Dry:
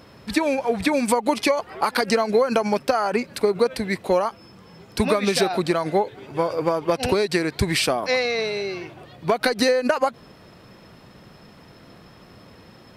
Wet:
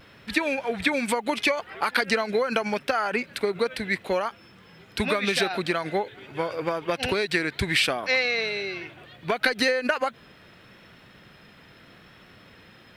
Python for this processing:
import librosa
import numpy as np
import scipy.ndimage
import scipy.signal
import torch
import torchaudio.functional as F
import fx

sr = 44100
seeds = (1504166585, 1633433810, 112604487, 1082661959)

y = fx.vibrato(x, sr, rate_hz=0.76, depth_cents=26.0)
y = fx.quant_dither(y, sr, seeds[0], bits=12, dither='triangular')
y = fx.band_shelf(y, sr, hz=2300.0, db=8.5, octaves=1.7)
y = F.gain(torch.from_numpy(y), -6.0).numpy()